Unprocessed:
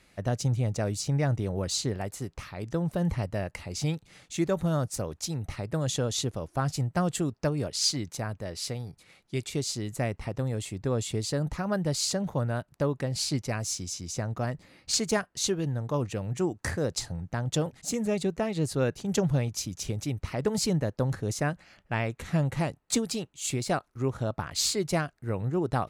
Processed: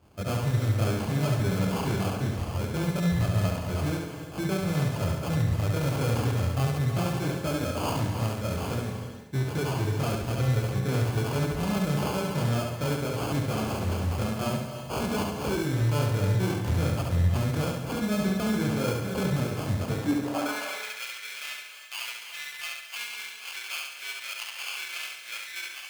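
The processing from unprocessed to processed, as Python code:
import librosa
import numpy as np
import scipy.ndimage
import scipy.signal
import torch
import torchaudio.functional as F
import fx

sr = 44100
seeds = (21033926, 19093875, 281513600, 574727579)

p1 = fx.fade_out_tail(x, sr, length_s=0.58)
p2 = fx.high_shelf(p1, sr, hz=5700.0, db=-8.0)
p3 = fx.rider(p2, sr, range_db=4, speed_s=0.5)
p4 = p2 + (p3 * librosa.db_to_amplitude(-0.5))
p5 = fx.chorus_voices(p4, sr, voices=2, hz=0.43, base_ms=24, depth_ms=3.7, mix_pct=60)
p6 = fx.sample_hold(p5, sr, seeds[0], rate_hz=1900.0, jitter_pct=0)
p7 = 10.0 ** (-26.0 / 20.0) * np.tanh(p6 / 10.0 ** (-26.0 / 20.0))
p8 = fx.filter_sweep_highpass(p7, sr, from_hz=80.0, to_hz=2300.0, start_s=19.76, end_s=20.71, q=2.2)
p9 = p8 + fx.echo_feedback(p8, sr, ms=69, feedback_pct=47, wet_db=-3.5, dry=0)
y = fx.rev_gated(p9, sr, seeds[1], gate_ms=360, shape='rising', drr_db=8.0)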